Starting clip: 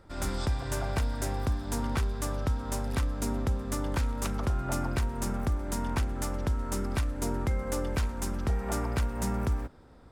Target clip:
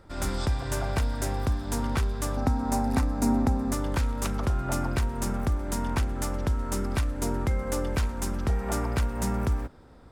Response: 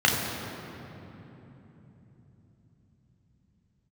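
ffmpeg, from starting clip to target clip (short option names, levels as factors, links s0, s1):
-filter_complex "[0:a]asettb=1/sr,asplit=3[s0][s1][s2];[s0]atrim=end=2.374[s3];[s1]atrim=start=2.37:end=3.73,asetpts=PTS-STARTPTS,afade=t=in:d=0.004:c=qsin,afade=t=out:st=1.356:d=0.004:c=qsin,equalizer=f=250:t=o:w=0.33:g=12,equalizer=f=800:t=o:w=0.33:g=11,equalizer=f=3150:t=o:w=0.33:g=-9[s4];[s2]atrim=start=3.726[s5];[s3][s4]acrossfade=d=0.004:c1=hsin:c2=qsin[s6];[s6][s5]acrossfade=d=0.004:c1=qsin:c2=hsin,volume=1.33"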